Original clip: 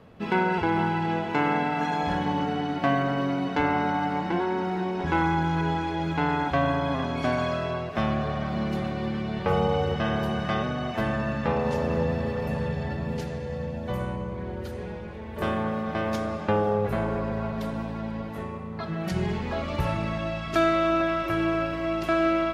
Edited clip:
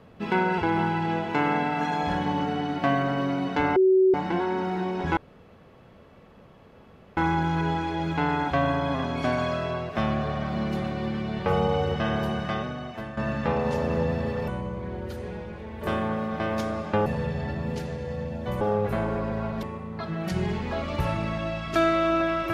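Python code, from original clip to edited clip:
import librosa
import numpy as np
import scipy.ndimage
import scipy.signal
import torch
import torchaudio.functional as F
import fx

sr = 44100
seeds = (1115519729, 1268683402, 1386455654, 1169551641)

y = fx.edit(x, sr, fx.bleep(start_s=3.76, length_s=0.38, hz=377.0, db=-15.0),
    fx.insert_room_tone(at_s=5.17, length_s=2.0),
    fx.fade_out_to(start_s=10.26, length_s=0.91, floor_db=-12.5),
    fx.move(start_s=12.48, length_s=1.55, to_s=16.61),
    fx.cut(start_s=17.63, length_s=0.8), tone=tone)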